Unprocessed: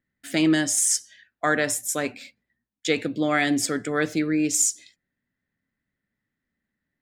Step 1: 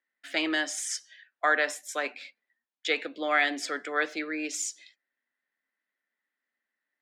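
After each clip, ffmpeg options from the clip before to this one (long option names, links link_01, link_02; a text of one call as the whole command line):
ffmpeg -i in.wav -filter_complex "[0:a]highpass=frequency=260:width=0.5412,highpass=frequency=260:width=1.3066,acrossover=split=560 4800:gain=0.2 1 0.126[link_01][link_02][link_03];[link_01][link_02][link_03]amix=inputs=3:normalize=0" out.wav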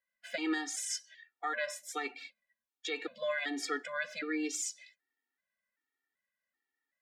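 ffmpeg -i in.wav -af "alimiter=limit=-21.5dB:level=0:latency=1:release=146,afftfilt=real='re*gt(sin(2*PI*1.3*pts/sr)*(1-2*mod(floor(b*sr/1024/240),2)),0)':imag='im*gt(sin(2*PI*1.3*pts/sr)*(1-2*mod(floor(b*sr/1024/240),2)),0)':win_size=1024:overlap=0.75" out.wav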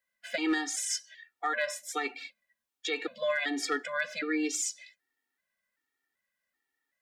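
ffmpeg -i in.wav -af "asoftclip=type=hard:threshold=-25.5dB,volume=4.5dB" out.wav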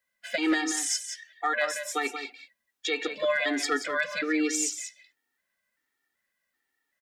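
ffmpeg -i in.wav -af "aecho=1:1:180:0.355,volume=3.5dB" out.wav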